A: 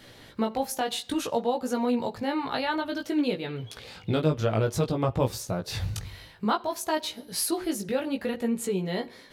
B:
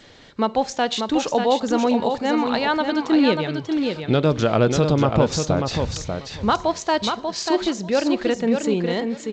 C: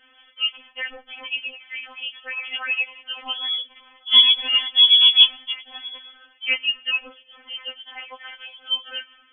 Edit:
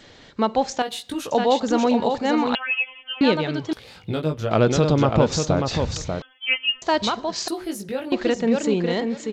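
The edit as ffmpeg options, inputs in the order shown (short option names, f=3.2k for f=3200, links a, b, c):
-filter_complex "[0:a]asplit=3[a][b][c];[2:a]asplit=2[d][e];[1:a]asplit=6[f][g][h][i][j][k];[f]atrim=end=0.822[l];[a]atrim=start=0.818:end=1.312[m];[g]atrim=start=1.308:end=2.552[n];[d]atrim=start=2.548:end=3.212[o];[h]atrim=start=3.208:end=3.732[p];[b]atrim=start=3.728:end=4.512[q];[i]atrim=start=4.508:end=6.222[r];[e]atrim=start=6.218:end=6.822[s];[j]atrim=start=6.818:end=7.482[t];[c]atrim=start=7.478:end=8.122[u];[k]atrim=start=8.118[v];[l][m]acrossfade=d=0.004:c1=hsin:c2=hsin[w];[w][n]acrossfade=d=0.004:c1=hsin:c2=hsin[x];[x][o]acrossfade=d=0.004:c1=hsin:c2=hsin[y];[y][p]acrossfade=d=0.004:c1=hsin:c2=hsin[z];[z][q]acrossfade=d=0.004:c1=hsin:c2=hsin[aa];[aa][r]acrossfade=d=0.004:c1=hsin:c2=hsin[ab];[ab][s]acrossfade=d=0.004:c1=hsin:c2=hsin[ac];[ac][t]acrossfade=d=0.004:c1=hsin:c2=hsin[ad];[ad][u]acrossfade=d=0.004:c1=hsin:c2=hsin[ae];[ae][v]acrossfade=d=0.004:c1=hsin:c2=hsin"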